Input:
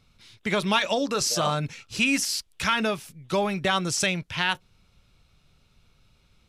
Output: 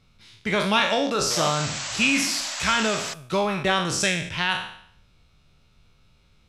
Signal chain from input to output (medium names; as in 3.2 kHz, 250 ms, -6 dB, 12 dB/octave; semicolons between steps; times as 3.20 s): spectral sustain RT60 0.64 s; treble shelf 9 kHz -7 dB; painted sound noise, 1.30–3.14 s, 530–8100 Hz -32 dBFS